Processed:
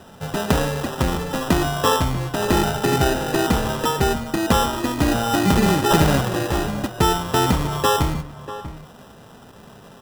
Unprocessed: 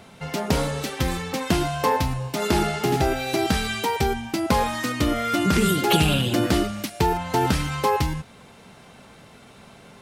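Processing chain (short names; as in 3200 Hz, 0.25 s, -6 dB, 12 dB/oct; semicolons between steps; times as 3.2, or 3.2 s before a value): 6.2–6.68 fixed phaser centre 1200 Hz, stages 8; sample-and-hold 20×; outdoor echo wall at 110 m, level -13 dB; gain +3 dB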